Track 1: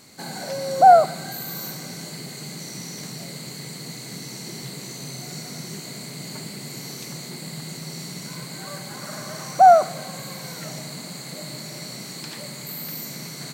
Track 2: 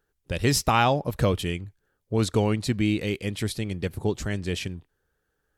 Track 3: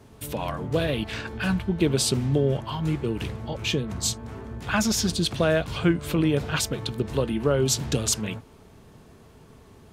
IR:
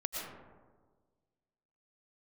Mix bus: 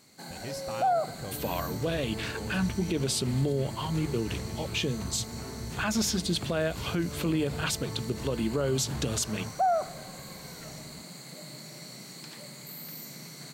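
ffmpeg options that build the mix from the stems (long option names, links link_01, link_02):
-filter_complex "[0:a]volume=-9dB[link_01];[1:a]volume=-18.5dB[link_02];[2:a]bandreject=frequency=50:width_type=h:width=6,bandreject=frequency=100:width_type=h:width=6,bandreject=frequency=150:width_type=h:width=6,bandreject=frequency=200:width_type=h:width=6,adelay=1100,volume=-2dB[link_03];[link_01][link_02][link_03]amix=inputs=3:normalize=0,alimiter=limit=-19dB:level=0:latency=1:release=79"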